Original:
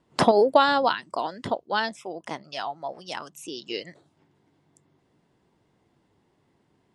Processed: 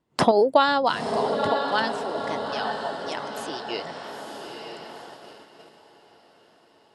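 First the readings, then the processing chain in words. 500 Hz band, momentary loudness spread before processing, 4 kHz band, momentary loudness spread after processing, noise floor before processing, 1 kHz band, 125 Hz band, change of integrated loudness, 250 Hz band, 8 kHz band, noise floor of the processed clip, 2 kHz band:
+1.5 dB, 18 LU, +1.5 dB, 19 LU, -69 dBFS, +1.5 dB, +1.5 dB, +1.0 dB, +1.5 dB, +1.5 dB, -59 dBFS, +1.5 dB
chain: echo that smears into a reverb 918 ms, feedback 54%, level -6 dB; gate -42 dBFS, range -8 dB

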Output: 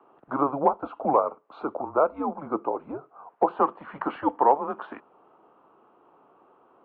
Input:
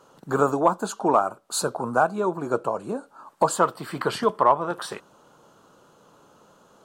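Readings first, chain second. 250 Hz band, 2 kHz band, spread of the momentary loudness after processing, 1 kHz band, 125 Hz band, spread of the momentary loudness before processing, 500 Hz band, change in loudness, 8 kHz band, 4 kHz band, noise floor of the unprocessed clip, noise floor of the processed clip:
-2.0 dB, -10.0 dB, 14 LU, -1.5 dB, -9.5 dB, 10 LU, -2.5 dB, -2.5 dB, under -40 dB, under -20 dB, -58 dBFS, -61 dBFS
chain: three-band isolator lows -20 dB, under 420 Hz, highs -19 dB, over 2.1 kHz; mistuned SSB -140 Hz 270–3300 Hz

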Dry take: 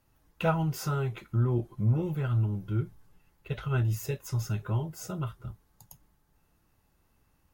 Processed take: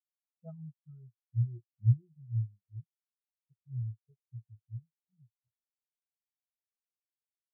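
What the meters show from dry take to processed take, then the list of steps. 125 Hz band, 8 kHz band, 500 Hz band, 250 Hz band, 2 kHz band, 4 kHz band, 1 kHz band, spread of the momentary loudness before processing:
-6.0 dB, under -35 dB, under -25 dB, under -15 dB, under -40 dB, under -35 dB, under -35 dB, 9 LU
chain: spectral contrast expander 4:1

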